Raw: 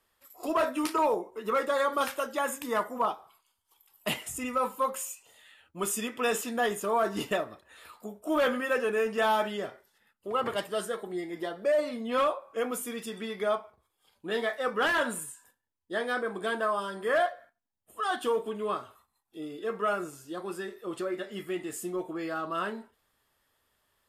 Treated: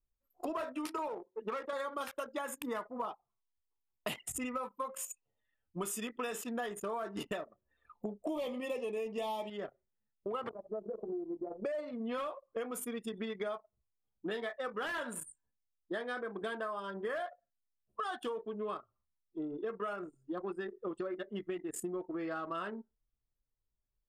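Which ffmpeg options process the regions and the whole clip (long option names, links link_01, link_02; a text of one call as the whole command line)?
ffmpeg -i in.wav -filter_complex "[0:a]asettb=1/sr,asplit=3[link_01][link_02][link_03];[link_01]atrim=end=1.084[link_04];[link_02]atrim=start=1.08:end=1.73,asetpts=PTS-STARTPTS,afade=type=in:duration=0.004:curve=qsin,afade=type=out:start_time=0.646:duration=0.004:curve=qsin,aeval=exprs='if(lt(val(0),0),0.447*val(0),val(0))':channel_layout=same,highpass=210[link_05];[link_03]atrim=start=1.726[link_06];[link_04][link_05]acrossfade=duration=0.004:curve1=hsin:curve2=qsin[link_07];[link_07][link_06]acrossfade=duration=0.004:curve1=qsin:curve2=hsin,asettb=1/sr,asplit=3[link_08][link_09][link_10];[link_08]atrim=end=7.954[link_11];[link_09]atrim=start=7.95:end=9.5,asetpts=PTS-STARTPTS,afade=type=in:duration=0.004:curve=qsin,afade=type=out:start_time=1.546:duration=0.004:curve=qsin,asuperstop=centerf=1500:order=4:qfactor=1.3,acontrast=22[link_12];[link_10]atrim=start=9.496[link_13];[link_11][link_12]acrossfade=duration=0.004:curve1=hsin:curve2=qsin[link_14];[link_14][link_13]acrossfade=duration=0.004:curve1=qsin:curve2=hsin,asettb=1/sr,asplit=3[link_15][link_16][link_17];[link_15]atrim=end=10.494[link_18];[link_16]atrim=start=10.49:end=11.64,asetpts=PTS-STARTPTS,afade=type=in:duration=0.004:curve=qsin,afade=type=out:start_time=1.146:duration=0.004:curve=qsin,lowpass=frequency=1000:width=0.5412,lowpass=frequency=1000:width=1.3066,acompressor=threshold=-38dB:ratio=4:attack=3.2:release=140:knee=1:detection=peak,asplit=2[link_19][link_20];[link_20]adelay=14,volume=-6dB[link_21];[link_19][link_21]amix=inputs=2:normalize=0,atrim=end_sample=50715[link_22];[link_17]atrim=start=11.636[link_23];[link_18][link_22]acrossfade=duration=0.004:curve1=hsin:curve2=qsin[link_24];[link_24][link_23]acrossfade=duration=0.004:curve1=qsin:curve2=hsin,anlmdn=1.58,acompressor=threshold=-40dB:ratio=10,volume=4.5dB" out.wav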